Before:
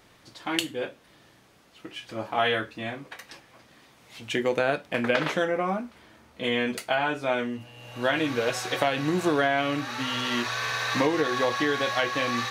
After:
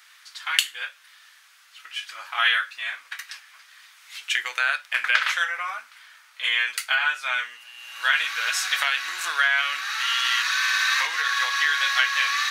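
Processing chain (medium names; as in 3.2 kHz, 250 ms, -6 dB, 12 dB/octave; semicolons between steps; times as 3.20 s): Chebyshev high-pass 1.4 kHz, order 3; trim +8.5 dB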